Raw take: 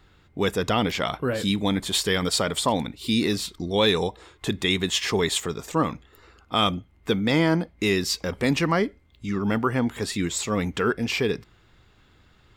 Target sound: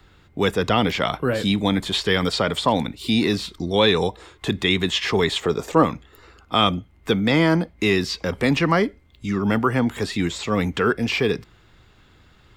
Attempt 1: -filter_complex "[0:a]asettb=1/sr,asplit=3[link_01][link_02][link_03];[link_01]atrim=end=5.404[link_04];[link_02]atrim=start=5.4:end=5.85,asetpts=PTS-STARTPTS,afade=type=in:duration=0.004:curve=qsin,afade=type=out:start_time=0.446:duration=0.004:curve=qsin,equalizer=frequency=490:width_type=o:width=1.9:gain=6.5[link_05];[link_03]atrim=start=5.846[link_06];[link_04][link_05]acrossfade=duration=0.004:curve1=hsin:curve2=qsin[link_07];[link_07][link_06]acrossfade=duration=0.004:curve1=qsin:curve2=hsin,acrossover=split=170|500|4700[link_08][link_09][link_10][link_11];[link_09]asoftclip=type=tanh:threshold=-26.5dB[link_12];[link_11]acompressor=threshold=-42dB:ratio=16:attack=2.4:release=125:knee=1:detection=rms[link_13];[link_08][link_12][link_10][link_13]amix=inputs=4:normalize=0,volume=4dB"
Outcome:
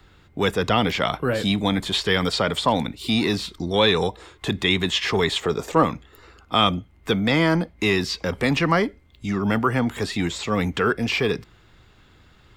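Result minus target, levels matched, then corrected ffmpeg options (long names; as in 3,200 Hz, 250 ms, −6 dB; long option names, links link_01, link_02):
soft clipping: distortion +8 dB
-filter_complex "[0:a]asettb=1/sr,asplit=3[link_01][link_02][link_03];[link_01]atrim=end=5.404[link_04];[link_02]atrim=start=5.4:end=5.85,asetpts=PTS-STARTPTS,afade=type=in:duration=0.004:curve=qsin,afade=type=out:start_time=0.446:duration=0.004:curve=qsin,equalizer=frequency=490:width_type=o:width=1.9:gain=6.5[link_05];[link_03]atrim=start=5.846[link_06];[link_04][link_05]acrossfade=duration=0.004:curve1=hsin:curve2=qsin[link_07];[link_07][link_06]acrossfade=duration=0.004:curve1=qsin:curve2=hsin,acrossover=split=170|500|4700[link_08][link_09][link_10][link_11];[link_09]asoftclip=type=tanh:threshold=-19dB[link_12];[link_11]acompressor=threshold=-42dB:ratio=16:attack=2.4:release=125:knee=1:detection=rms[link_13];[link_08][link_12][link_10][link_13]amix=inputs=4:normalize=0,volume=4dB"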